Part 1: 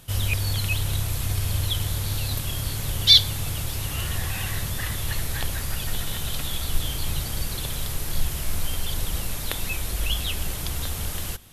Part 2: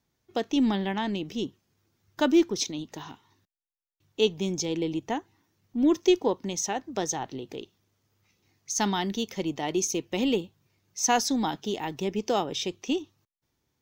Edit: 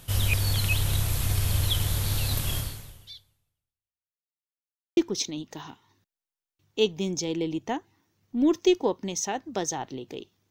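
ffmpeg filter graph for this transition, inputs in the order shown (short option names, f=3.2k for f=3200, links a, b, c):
-filter_complex "[0:a]apad=whole_dur=10.5,atrim=end=10.5,asplit=2[a][b];[a]atrim=end=4.33,asetpts=PTS-STARTPTS,afade=t=out:st=2.57:d=1.76:c=exp[c];[b]atrim=start=4.33:end=4.97,asetpts=PTS-STARTPTS,volume=0[d];[1:a]atrim=start=2.38:end=7.91,asetpts=PTS-STARTPTS,afade=t=in:d=0.004:c=hsin[e];[c][d][e]concat=n=3:v=0:a=1"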